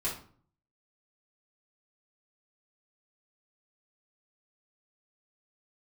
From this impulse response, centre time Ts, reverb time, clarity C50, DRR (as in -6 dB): 30 ms, 0.50 s, 6.5 dB, -7.0 dB